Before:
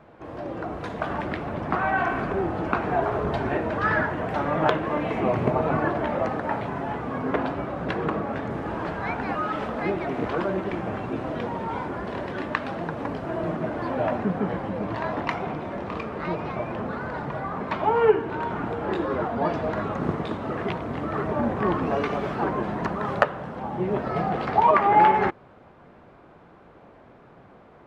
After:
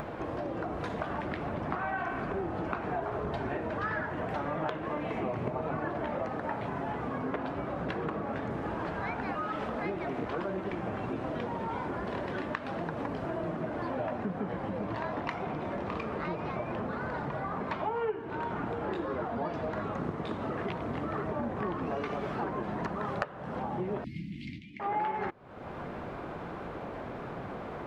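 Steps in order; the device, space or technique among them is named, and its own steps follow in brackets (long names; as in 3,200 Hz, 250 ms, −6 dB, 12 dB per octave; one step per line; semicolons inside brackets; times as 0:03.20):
upward and downward compression (upward compression, threshold −28 dBFS; downward compressor 4 to 1, threshold −32 dBFS, peak gain reduction 16.5 dB)
0:24.04–0:24.80: Chebyshev band-stop filter 310–2,100 Hz, order 5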